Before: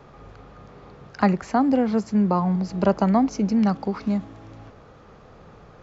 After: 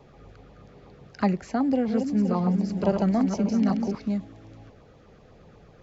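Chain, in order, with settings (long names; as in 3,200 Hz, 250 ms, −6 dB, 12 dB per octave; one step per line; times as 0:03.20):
0:01.62–0:03.95: feedback delay that plays each chunk backwards 260 ms, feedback 54%, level −5.5 dB
auto-filter notch saw down 8.1 Hz 780–1,600 Hz
level −3.5 dB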